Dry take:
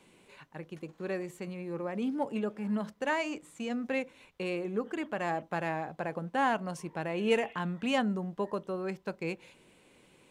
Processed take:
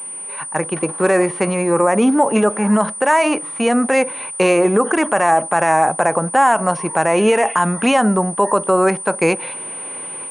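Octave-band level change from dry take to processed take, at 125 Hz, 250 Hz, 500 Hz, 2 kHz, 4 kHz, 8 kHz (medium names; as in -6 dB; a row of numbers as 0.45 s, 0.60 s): +14.5 dB, +15.5 dB, +18.0 dB, +16.0 dB, +12.5 dB, +31.5 dB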